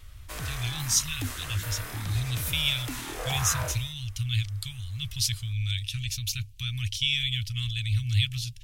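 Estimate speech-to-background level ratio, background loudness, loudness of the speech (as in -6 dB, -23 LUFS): 7.0 dB, -36.0 LUFS, -29.0 LUFS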